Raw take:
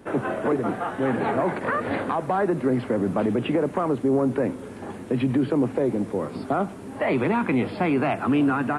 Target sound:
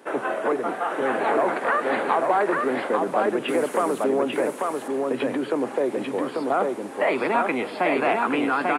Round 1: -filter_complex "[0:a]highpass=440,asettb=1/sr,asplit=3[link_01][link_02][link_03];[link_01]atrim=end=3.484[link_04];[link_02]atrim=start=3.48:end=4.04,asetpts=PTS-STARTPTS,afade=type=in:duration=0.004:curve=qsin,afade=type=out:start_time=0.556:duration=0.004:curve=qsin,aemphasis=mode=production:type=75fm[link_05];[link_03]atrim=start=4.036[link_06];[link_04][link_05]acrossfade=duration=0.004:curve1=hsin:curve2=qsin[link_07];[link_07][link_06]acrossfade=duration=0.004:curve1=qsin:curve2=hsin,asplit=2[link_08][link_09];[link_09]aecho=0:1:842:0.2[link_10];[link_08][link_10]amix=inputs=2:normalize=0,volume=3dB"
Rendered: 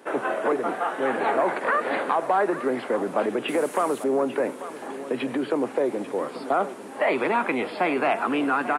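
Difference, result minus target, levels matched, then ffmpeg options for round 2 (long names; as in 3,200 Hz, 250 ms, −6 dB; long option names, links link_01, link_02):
echo-to-direct −11 dB
-filter_complex "[0:a]highpass=440,asettb=1/sr,asplit=3[link_01][link_02][link_03];[link_01]atrim=end=3.484[link_04];[link_02]atrim=start=3.48:end=4.04,asetpts=PTS-STARTPTS,afade=type=in:duration=0.004:curve=qsin,afade=type=out:start_time=0.556:duration=0.004:curve=qsin,aemphasis=mode=production:type=75fm[link_05];[link_03]atrim=start=4.036[link_06];[link_04][link_05]acrossfade=duration=0.004:curve1=hsin:curve2=qsin[link_07];[link_07][link_06]acrossfade=duration=0.004:curve1=qsin:curve2=hsin,asplit=2[link_08][link_09];[link_09]aecho=0:1:842:0.708[link_10];[link_08][link_10]amix=inputs=2:normalize=0,volume=3dB"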